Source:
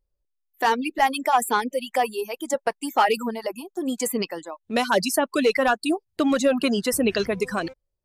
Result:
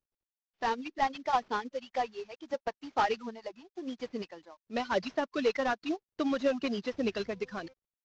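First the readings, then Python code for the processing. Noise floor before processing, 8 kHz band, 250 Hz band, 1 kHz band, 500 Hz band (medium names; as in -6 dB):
-77 dBFS, -22.5 dB, -10.5 dB, -9.0 dB, -9.5 dB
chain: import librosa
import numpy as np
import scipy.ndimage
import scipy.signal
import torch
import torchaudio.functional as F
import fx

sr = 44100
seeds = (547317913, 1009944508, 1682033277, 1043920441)

y = fx.cvsd(x, sr, bps=32000)
y = fx.upward_expand(y, sr, threshold_db=-34.0, expansion=1.5)
y = y * librosa.db_to_amplitude(-7.0)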